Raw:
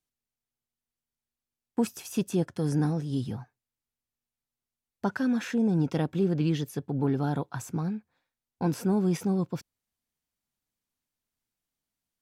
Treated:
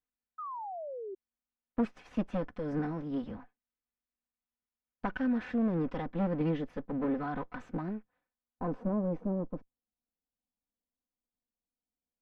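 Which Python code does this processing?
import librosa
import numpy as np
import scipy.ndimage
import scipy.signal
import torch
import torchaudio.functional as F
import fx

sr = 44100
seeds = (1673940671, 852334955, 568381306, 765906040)

y = fx.lower_of_two(x, sr, delay_ms=4.0)
y = fx.spec_paint(y, sr, seeds[0], shape='fall', start_s=0.38, length_s=0.77, low_hz=370.0, high_hz=1300.0, level_db=-37.0)
y = fx.filter_sweep_lowpass(y, sr, from_hz=2000.0, to_hz=710.0, start_s=8.02, end_s=9.12, q=0.96)
y = y * 10.0 ** (-3.5 / 20.0)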